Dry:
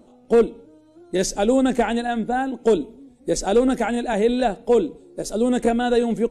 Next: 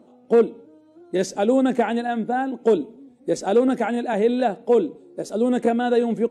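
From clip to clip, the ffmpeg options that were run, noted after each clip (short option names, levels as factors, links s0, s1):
-af "highpass=150,highshelf=f=3700:g=-10"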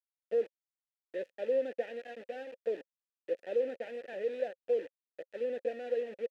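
-filter_complex "[0:a]aeval=exprs='val(0)*gte(abs(val(0)),0.0631)':c=same,asplit=3[s0][s1][s2];[s0]bandpass=f=530:t=q:w=8,volume=1[s3];[s1]bandpass=f=1840:t=q:w=8,volume=0.501[s4];[s2]bandpass=f=2480:t=q:w=8,volume=0.355[s5];[s3][s4][s5]amix=inputs=3:normalize=0,volume=0.447"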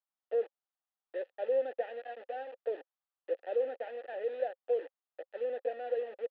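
-af "highpass=f=340:w=0.5412,highpass=f=340:w=1.3066,equalizer=f=400:t=q:w=4:g=-3,equalizer=f=780:t=q:w=4:g=9,equalizer=f=1200:t=q:w=4:g=6,equalizer=f=2300:t=q:w=4:g=-7,lowpass=f=3500:w=0.5412,lowpass=f=3500:w=1.3066"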